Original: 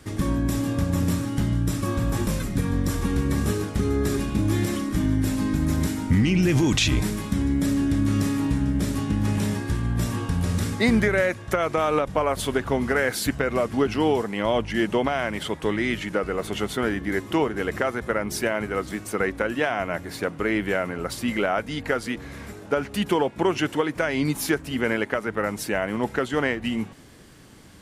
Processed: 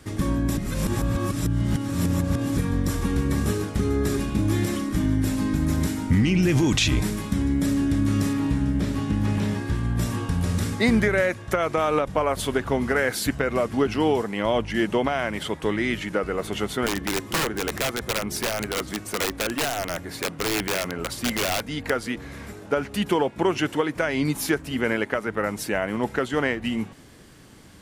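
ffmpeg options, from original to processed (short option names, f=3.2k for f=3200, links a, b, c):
-filter_complex "[0:a]asettb=1/sr,asplit=3[a][b][c];[a]atrim=end=8.334[d];[b]atrim=start=8.33:end=9.83,asetpts=PTS-STARTPTS,afade=t=in:d=0.004:c=qsin,afade=t=out:st=1.496:d=0.004:c=qsin,acrossover=split=5000[e][f];[f]acompressor=threshold=-49dB:ratio=4:attack=1:release=60[g];[e][g]amix=inputs=2:normalize=0[h];[c]atrim=start=9.826[i];[d][h]acrossfade=d=0.004:c1=hsin:c2=qsin[j];[j][i]acrossfade=d=0.004:c1=qsin:c2=hsin,asettb=1/sr,asplit=3[k][l][m];[k]atrim=end=16.864[n];[l]atrim=start=16.86:end=21.9,asetpts=PTS-STARTPTS,afade=t=in:d=0.004:c=qsin,afade=t=out:st=5.036:d=0.004:c=qsin,aeval=exprs='(mod(7.94*val(0)+1,2)-1)/7.94':c=same[o];[m]atrim=start=21.896[p];[n][o]acrossfade=d=0.004:c1=hsin:c2=qsin[q];[q][p]acrossfade=d=0.004:c1=qsin:c2=hsin,asplit=3[r][s][t];[r]atrim=end=0.572[u];[s]atrim=start=0.568:end=2.572,asetpts=PTS-STARTPTS,areverse[v];[t]atrim=start=2.568[w];[u][v]acrossfade=d=0.004:c1=hsin:c2=hsin[x];[x][w]acrossfade=d=0.004:c1=hsin:c2=hsin"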